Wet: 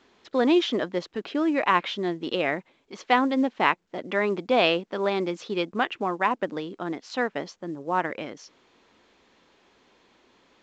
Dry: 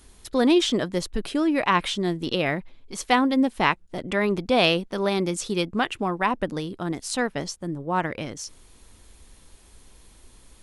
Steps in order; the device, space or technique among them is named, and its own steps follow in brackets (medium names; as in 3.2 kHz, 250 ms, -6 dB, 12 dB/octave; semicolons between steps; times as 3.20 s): telephone (band-pass 270–3100 Hz; µ-law 128 kbps 16 kHz)